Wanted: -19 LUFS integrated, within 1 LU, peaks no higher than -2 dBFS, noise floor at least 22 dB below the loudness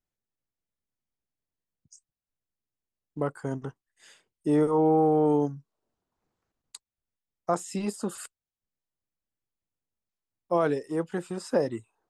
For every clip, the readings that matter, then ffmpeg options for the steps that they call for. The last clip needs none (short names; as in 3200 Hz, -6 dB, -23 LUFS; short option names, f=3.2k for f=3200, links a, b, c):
loudness -27.5 LUFS; peak -13.0 dBFS; loudness target -19.0 LUFS
-> -af "volume=8.5dB"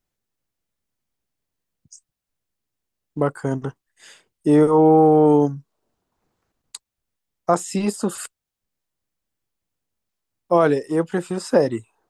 loudness -19.0 LUFS; peak -4.5 dBFS; noise floor -84 dBFS